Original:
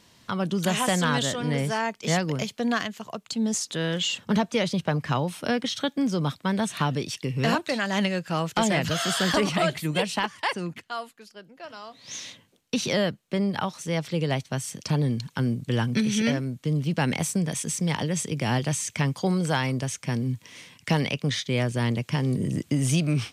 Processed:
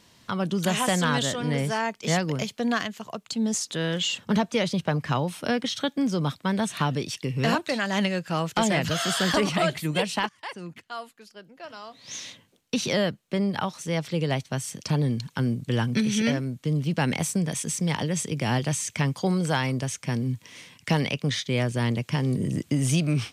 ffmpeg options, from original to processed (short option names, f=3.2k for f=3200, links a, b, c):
-filter_complex "[0:a]asplit=2[a][b];[a]atrim=end=10.29,asetpts=PTS-STARTPTS,afade=t=out:st=10.286:d=0.004:c=hsin:silence=0.158489[c];[b]atrim=start=10.29,asetpts=PTS-STARTPTS,afade=t=in:d=1.46:c=qsin:silence=0.158489[d];[c][d]concat=n=2:v=0:a=1"